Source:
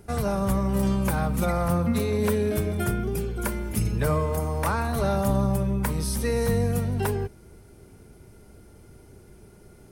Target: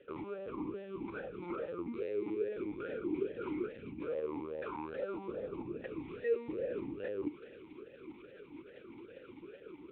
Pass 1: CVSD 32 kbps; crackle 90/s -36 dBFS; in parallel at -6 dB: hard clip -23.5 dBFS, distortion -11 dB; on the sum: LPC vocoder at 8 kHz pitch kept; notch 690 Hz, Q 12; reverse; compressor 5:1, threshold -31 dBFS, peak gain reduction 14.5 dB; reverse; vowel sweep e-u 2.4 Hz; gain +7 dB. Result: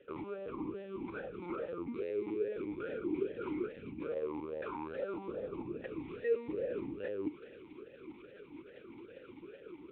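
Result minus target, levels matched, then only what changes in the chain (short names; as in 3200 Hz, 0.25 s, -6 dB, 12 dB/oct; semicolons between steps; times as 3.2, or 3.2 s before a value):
hard clip: distortion -5 dB
change: hard clip -30.5 dBFS, distortion -6 dB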